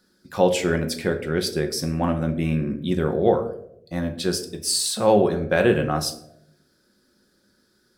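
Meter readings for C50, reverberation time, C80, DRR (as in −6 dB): 11.0 dB, 0.80 s, 14.5 dB, 5.0 dB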